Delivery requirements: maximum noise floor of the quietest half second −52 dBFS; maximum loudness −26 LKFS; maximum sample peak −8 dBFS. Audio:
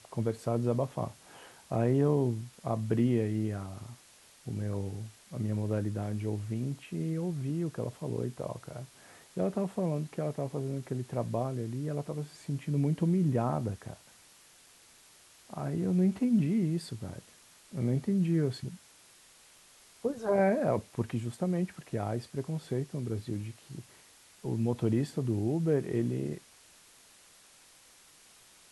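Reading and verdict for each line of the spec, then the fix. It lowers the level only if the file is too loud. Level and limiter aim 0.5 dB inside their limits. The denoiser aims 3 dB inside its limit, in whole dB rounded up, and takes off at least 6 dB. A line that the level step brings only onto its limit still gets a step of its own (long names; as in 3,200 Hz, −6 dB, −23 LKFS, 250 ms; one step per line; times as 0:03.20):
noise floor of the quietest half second −59 dBFS: in spec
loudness −32.5 LKFS: in spec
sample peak −15.5 dBFS: in spec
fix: no processing needed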